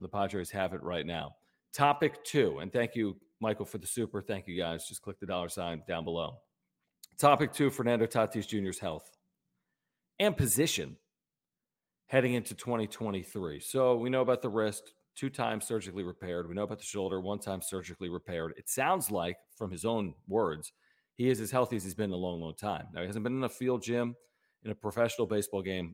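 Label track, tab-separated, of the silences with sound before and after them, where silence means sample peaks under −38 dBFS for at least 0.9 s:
8.980000	10.200000	silence
10.880000	12.120000	silence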